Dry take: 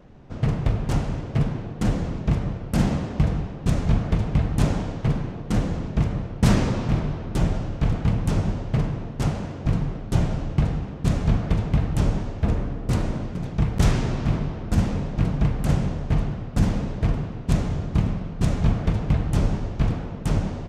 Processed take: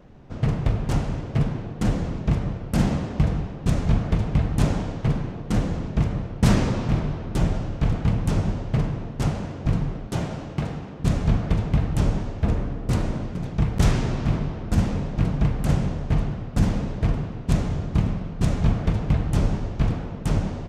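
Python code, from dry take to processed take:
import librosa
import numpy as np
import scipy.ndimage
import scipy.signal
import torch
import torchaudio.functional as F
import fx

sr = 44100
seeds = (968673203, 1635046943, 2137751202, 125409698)

y = fx.highpass(x, sr, hz=210.0, slope=6, at=(10.07, 10.99))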